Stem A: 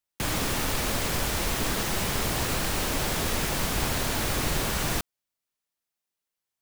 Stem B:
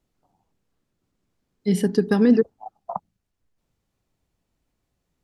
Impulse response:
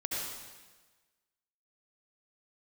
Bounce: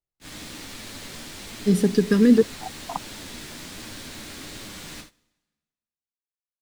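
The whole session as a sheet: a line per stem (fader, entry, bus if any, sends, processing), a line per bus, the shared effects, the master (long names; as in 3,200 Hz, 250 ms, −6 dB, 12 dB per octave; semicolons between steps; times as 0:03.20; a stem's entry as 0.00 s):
−17.5 dB, 0.00 s, send −4 dB, octave-band graphic EQ 250/2,000/4,000/8,000 Hz +9/+5/+8/+6 dB; flanger 1.3 Hz, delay 8.7 ms, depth 5.2 ms, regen +30%
+1.5 dB, 0.00 s, no send, notch on a step sequencer 2.1 Hz 240–3,600 Hz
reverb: on, RT60 1.3 s, pre-delay 62 ms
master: noise gate −41 dBFS, range −20 dB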